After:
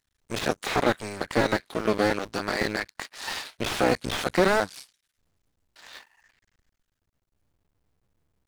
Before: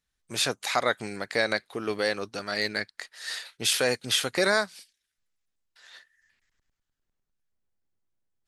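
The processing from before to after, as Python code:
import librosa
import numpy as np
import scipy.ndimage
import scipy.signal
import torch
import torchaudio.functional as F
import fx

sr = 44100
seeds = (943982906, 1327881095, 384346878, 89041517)

y = fx.cycle_switch(x, sr, every=2, mode='muted')
y = fx.slew_limit(y, sr, full_power_hz=60.0)
y = F.gain(torch.from_numpy(y), 7.5).numpy()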